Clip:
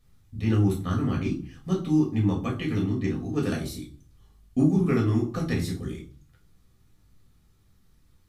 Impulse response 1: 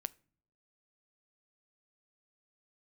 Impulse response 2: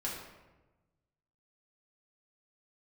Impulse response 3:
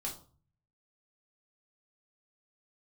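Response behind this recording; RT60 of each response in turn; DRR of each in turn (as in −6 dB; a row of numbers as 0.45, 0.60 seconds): 3; non-exponential decay, 1.1 s, 0.40 s; 16.5, −5.5, −2.5 decibels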